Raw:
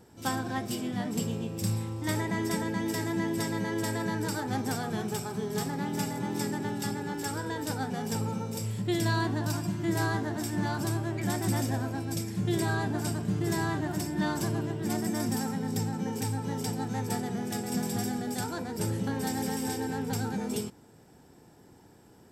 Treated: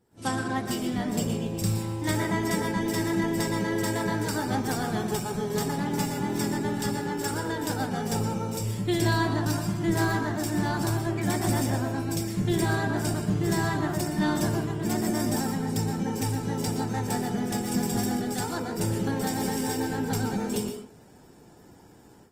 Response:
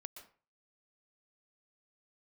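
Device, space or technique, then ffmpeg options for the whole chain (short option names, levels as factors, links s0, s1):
speakerphone in a meeting room: -filter_complex "[1:a]atrim=start_sample=2205[s0];[0:a][s0]afir=irnorm=-1:irlink=0,dynaudnorm=f=110:g=3:m=6.68,volume=0.422" -ar 48000 -c:a libopus -b:a 24k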